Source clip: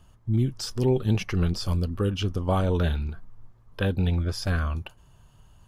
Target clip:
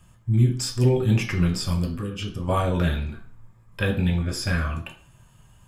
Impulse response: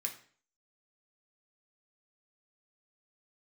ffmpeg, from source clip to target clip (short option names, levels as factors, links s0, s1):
-filter_complex "[0:a]asettb=1/sr,asplit=3[s0][s1][s2];[s0]atrim=end=1.934[s3];[s1]atrim=start=1.93:end=2.4,asetpts=PTS-STARTPTS,afade=t=in:d=0.004:c=qsin,afade=t=out:st=0.466:d=0.004:c=qsin,acompressor=threshold=0.0316:ratio=4[s4];[s2]atrim=start=2.396[s5];[s3][s4]acrossfade=d=0.004:c1=hsin:c2=qsin[s6];[s6][s5]acrossfade=d=0.004:c1=qsin:c2=hsin[s7];[1:a]atrim=start_sample=2205[s8];[s7][s8]afir=irnorm=-1:irlink=0,volume=1.78"